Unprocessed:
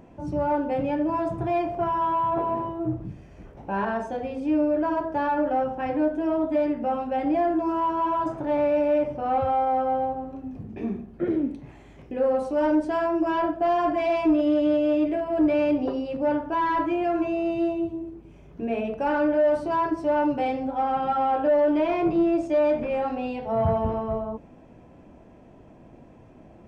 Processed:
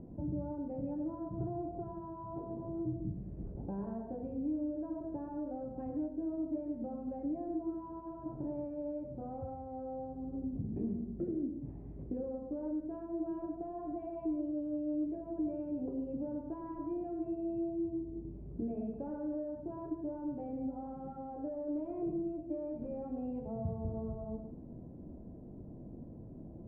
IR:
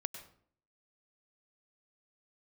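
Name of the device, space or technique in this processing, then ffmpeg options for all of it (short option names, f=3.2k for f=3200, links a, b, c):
television next door: -filter_complex "[0:a]asettb=1/sr,asplit=3[a][b][c];[a]atrim=end=0.914[d];[b]atrim=start=0.91:end=1.63,asetpts=PTS-STARTPTS,afade=t=in:d=0.004:c=qsin,afade=t=out:st=0.716:d=0.004:c=qsin,highshelf=f=2k:t=q:w=3:g=-12.5[e];[c]atrim=start=1.626[f];[d][e]acrossfade=d=0.004:c1=hsin:c2=qsin[g];[g][f]acrossfade=d=0.004:c1=qsin:c2=hsin,acompressor=threshold=-36dB:ratio=4,lowpass=350[h];[1:a]atrim=start_sample=2205[i];[h][i]afir=irnorm=-1:irlink=0,volume=3.5dB"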